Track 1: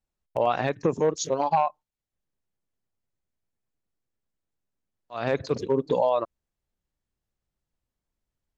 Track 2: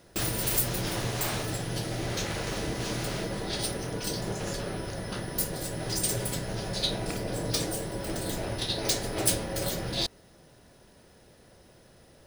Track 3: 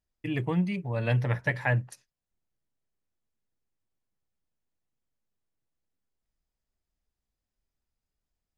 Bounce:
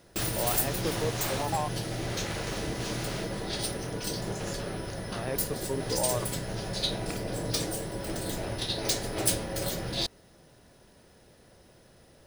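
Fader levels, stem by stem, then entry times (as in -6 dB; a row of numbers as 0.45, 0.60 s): -9.0 dB, -1.0 dB, off; 0.00 s, 0.00 s, off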